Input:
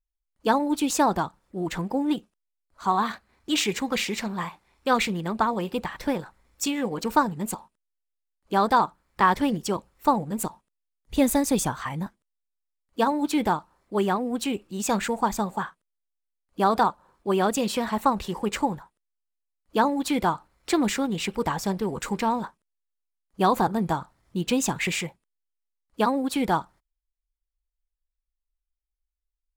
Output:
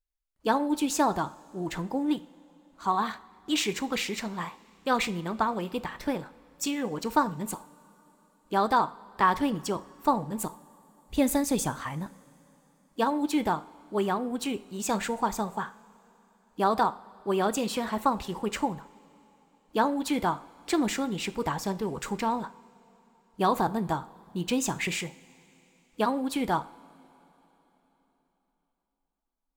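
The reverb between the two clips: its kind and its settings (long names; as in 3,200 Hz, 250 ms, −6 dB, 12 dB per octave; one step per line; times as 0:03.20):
coupled-rooms reverb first 0.46 s, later 3.9 s, from −18 dB, DRR 13 dB
level −3.5 dB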